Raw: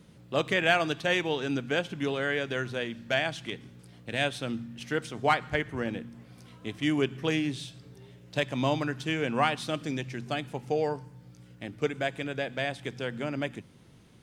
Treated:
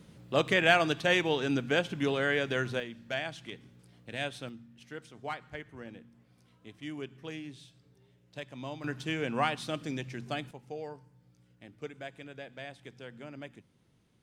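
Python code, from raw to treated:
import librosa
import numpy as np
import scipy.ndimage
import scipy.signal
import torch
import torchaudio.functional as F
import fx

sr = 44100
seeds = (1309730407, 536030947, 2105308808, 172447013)

y = fx.gain(x, sr, db=fx.steps((0.0, 0.5), (2.8, -7.0), (4.49, -13.5), (8.84, -3.5), (10.51, -12.5)))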